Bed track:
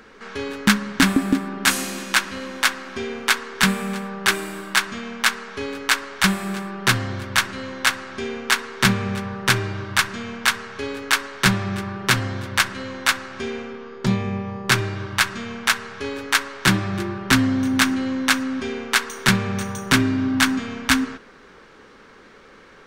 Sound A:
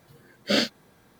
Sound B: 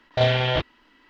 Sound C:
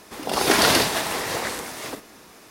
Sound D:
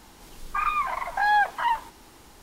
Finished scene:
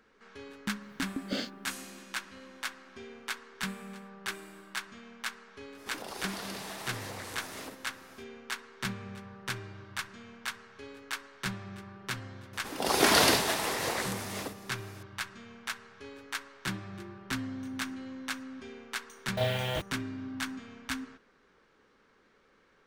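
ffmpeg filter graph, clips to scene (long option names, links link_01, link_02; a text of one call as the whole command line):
ffmpeg -i bed.wav -i cue0.wav -i cue1.wav -i cue2.wav -filter_complex "[3:a]asplit=2[link_01][link_02];[0:a]volume=-18dB[link_03];[link_01]acompressor=threshold=-29dB:ratio=6:attack=3.2:release=140:knee=1:detection=peak[link_04];[2:a]acrusher=bits=5:mix=0:aa=0.000001[link_05];[1:a]atrim=end=1.19,asetpts=PTS-STARTPTS,volume=-13dB,afade=type=in:duration=0.004:curve=hsin,afade=type=out:start_time=1.186:duration=0.004:curve=hsin,adelay=810[link_06];[link_04]atrim=end=2.5,asetpts=PTS-STARTPTS,volume=-9dB,afade=type=in:duration=0.05,afade=type=out:start_time=2.45:duration=0.05,adelay=5750[link_07];[link_02]atrim=end=2.5,asetpts=PTS-STARTPTS,volume=-5dB,afade=type=in:duration=0.004:curve=hsin,afade=type=out:start_time=2.496:duration=0.004:curve=hsin,adelay=12530[link_08];[link_05]atrim=end=1.09,asetpts=PTS-STARTPTS,volume=-10dB,afade=type=in:duration=0.004:curve=hsin,afade=type=out:start_time=1.086:duration=0.004:curve=hsin,adelay=19200[link_09];[link_03][link_06][link_07][link_08][link_09]amix=inputs=5:normalize=0" out.wav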